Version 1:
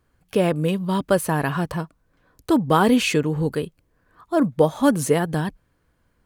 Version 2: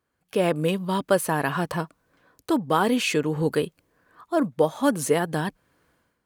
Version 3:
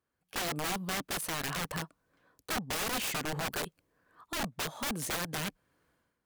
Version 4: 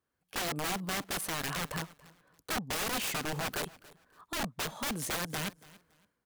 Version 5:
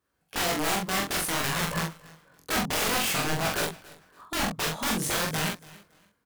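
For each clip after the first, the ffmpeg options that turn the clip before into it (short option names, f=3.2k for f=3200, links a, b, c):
-af "highpass=f=260:p=1,dynaudnorm=f=110:g=7:m=16dB,volume=-7dB"
-af "aeval=exprs='(mod(11.2*val(0)+1,2)-1)/11.2':c=same,volume=-7.5dB"
-af "aecho=1:1:282|564:0.0891|0.0214"
-filter_complex "[0:a]flanger=delay=17.5:depth=8:speed=0.55,asplit=2[a][b];[b]adelay=44,volume=-3dB[c];[a][c]amix=inputs=2:normalize=0,volume=8.5dB"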